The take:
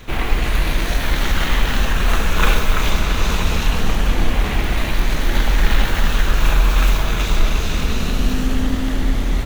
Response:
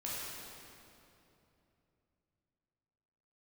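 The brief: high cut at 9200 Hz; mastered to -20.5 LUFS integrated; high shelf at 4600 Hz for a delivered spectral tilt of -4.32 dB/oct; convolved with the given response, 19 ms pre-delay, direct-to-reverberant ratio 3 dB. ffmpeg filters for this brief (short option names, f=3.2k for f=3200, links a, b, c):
-filter_complex "[0:a]lowpass=9.2k,highshelf=f=4.6k:g=4.5,asplit=2[a][b];[1:a]atrim=start_sample=2205,adelay=19[c];[b][c]afir=irnorm=-1:irlink=0,volume=-5.5dB[d];[a][d]amix=inputs=2:normalize=0,volume=-2.5dB"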